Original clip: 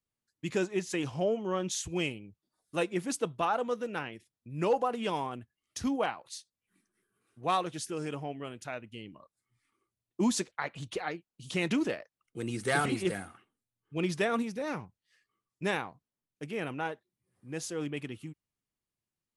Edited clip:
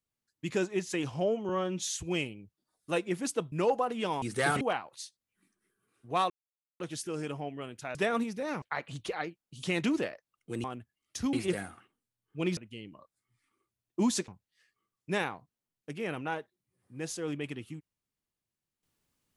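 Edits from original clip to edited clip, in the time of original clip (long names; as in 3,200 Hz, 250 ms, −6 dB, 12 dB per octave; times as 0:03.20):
0:01.49–0:01.79: time-stretch 1.5×
0:03.37–0:04.55: remove
0:05.25–0:05.94: swap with 0:12.51–0:12.90
0:07.63: splice in silence 0.50 s
0:08.78–0:10.49: swap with 0:14.14–0:14.81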